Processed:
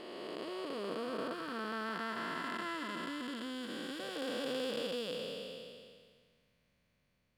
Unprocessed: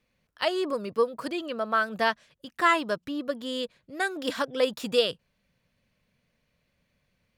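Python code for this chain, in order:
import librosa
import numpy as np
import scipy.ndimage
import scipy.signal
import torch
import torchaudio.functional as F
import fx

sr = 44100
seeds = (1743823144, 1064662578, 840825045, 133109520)

y = fx.spec_blur(x, sr, span_ms=1090.0)
y = fx.peak_eq(y, sr, hz=620.0, db=-9.0, octaves=0.72, at=(1.33, 4.0))
y = F.gain(torch.from_numpy(y), -1.0).numpy()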